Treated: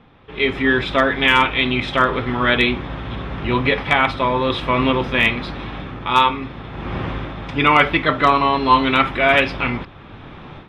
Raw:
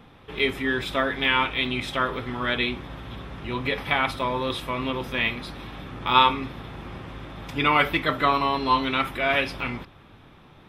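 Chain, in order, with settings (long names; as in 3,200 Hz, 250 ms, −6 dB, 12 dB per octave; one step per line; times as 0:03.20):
low-pass filter 3,600 Hz 12 dB per octave
automatic gain control gain up to 16 dB
hard clipping −3 dBFS, distortion −34 dB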